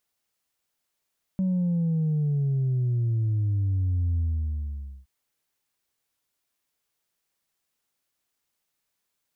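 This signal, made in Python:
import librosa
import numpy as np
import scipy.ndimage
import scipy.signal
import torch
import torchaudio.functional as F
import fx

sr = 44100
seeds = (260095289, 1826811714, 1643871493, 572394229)

y = fx.sub_drop(sr, level_db=-22.0, start_hz=190.0, length_s=3.67, drive_db=1.0, fade_s=0.88, end_hz=65.0)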